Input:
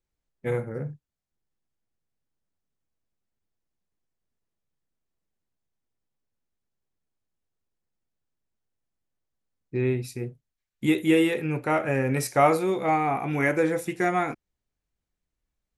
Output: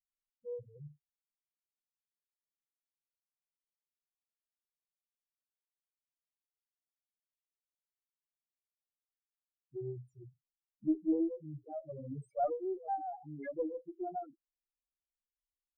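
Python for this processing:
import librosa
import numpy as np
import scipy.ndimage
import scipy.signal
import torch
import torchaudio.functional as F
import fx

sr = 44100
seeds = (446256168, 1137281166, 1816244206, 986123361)

y = fx.spec_topn(x, sr, count=2)
y = fx.cheby_harmonics(y, sr, harmonics=(2,), levels_db=(-27,), full_scale_db=-15.0)
y = fx.upward_expand(y, sr, threshold_db=-43.0, expansion=1.5)
y = y * librosa.db_to_amplitude(-7.0)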